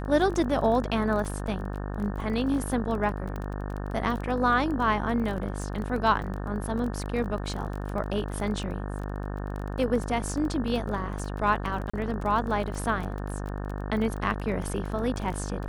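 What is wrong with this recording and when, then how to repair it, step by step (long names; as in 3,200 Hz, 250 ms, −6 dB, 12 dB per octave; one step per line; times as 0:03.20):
mains buzz 50 Hz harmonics 36 −33 dBFS
surface crackle 22 per second −32 dBFS
0:03.36: click −23 dBFS
0:11.90–0:11.94: drop-out 35 ms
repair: click removal
hum removal 50 Hz, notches 36
repair the gap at 0:11.90, 35 ms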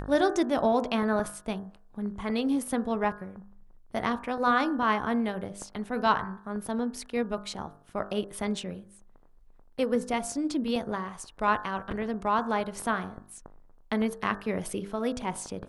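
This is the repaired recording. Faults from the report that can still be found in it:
0:03.36: click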